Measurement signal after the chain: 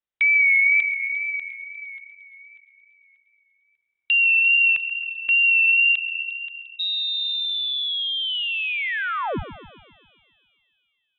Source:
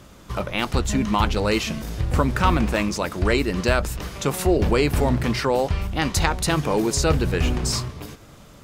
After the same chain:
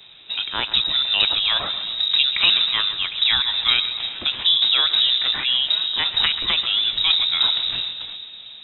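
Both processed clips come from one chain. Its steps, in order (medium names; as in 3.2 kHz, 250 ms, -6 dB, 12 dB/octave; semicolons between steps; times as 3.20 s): wow and flutter 70 cents; frequency inversion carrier 3.8 kHz; two-band feedback delay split 3 kHz, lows 134 ms, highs 351 ms, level -13 dB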